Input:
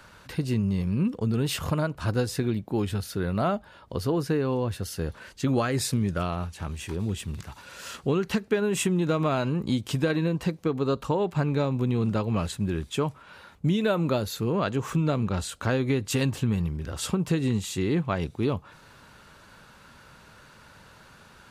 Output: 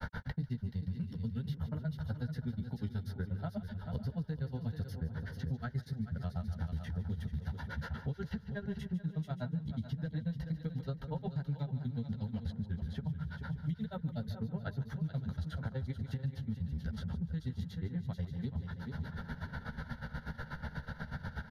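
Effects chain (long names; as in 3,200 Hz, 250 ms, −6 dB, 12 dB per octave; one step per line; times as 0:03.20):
mains-hum notches 50/100/150/200 Hz
reversed playback
downward compressor, threshold −32 dBFS, peak gain reduction 13 dB
reversed playback
tilt shelving filter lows +8 dB, about 1,200 Hz
double-tracking delay 13 ms −5.5 dB
granular cloud 92 ms, grains 8.2 per second, spray 11 ms, pitch spread up and down by 0 semitones
parametric band 610 Hz −11.5 dB 1.1 octaves
phaser with its sweep stopped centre 1,700 Hz, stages 8
on a send: echo machine with several playback heads 143 ms, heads first and third, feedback 45%, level −14 dB
on the sum: brickwall limiter −29.5 dBFS, peak gain reduction 10 dB
multiband upward and downward compressor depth 100%
level +1 dB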